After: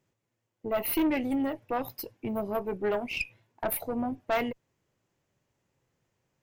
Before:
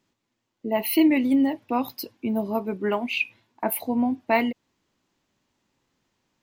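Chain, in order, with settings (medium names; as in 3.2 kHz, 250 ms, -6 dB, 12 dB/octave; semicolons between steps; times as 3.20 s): ten-band graphic EQ 125 Hz +8 dB, 250 Hz -8 dB, 500 Hz +5 dB, 1 kHz -4 dB, 4 kHz -8 dB; valve stage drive 21 dB, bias 0.55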